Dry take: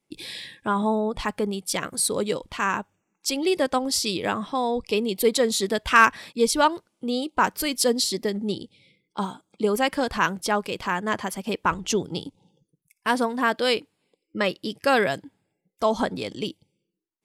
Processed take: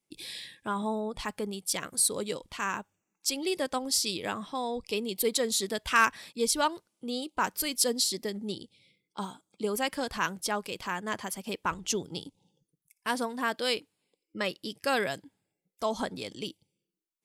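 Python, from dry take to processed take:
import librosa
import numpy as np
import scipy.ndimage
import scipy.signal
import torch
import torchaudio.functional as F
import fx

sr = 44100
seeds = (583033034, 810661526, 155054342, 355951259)

y = fx.high_shelf(x, sr, hz=3800.0, db=8.5)
y = F.gain(torch.from_numpy(y), -8.5).numpy()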